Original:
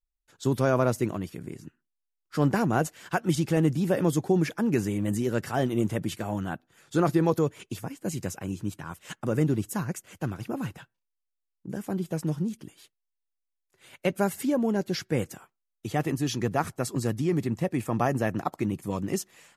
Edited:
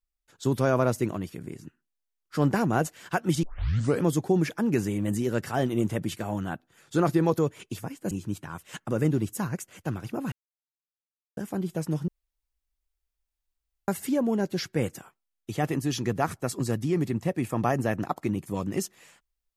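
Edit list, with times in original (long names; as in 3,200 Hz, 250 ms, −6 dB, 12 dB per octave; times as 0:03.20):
0:03.43: tape start 0.61 s
0:08.11–0:08.47: remove
0:10.68–0:11.73: silence
0:12.44–0:14.24: fill with room tone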